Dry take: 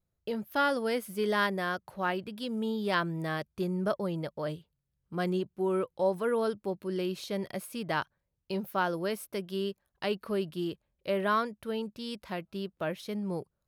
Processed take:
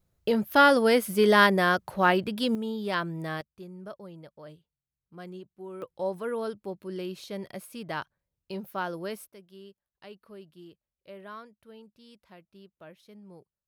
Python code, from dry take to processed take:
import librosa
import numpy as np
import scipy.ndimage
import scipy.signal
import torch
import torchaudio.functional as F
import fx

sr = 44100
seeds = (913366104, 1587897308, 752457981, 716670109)

y = fx.gain(x, sr, db=fx.steps((0.0, 9.0), (2.55, -0.5), (3.41, -12.0), (5.82, -3.0), (9.28, -15.5)))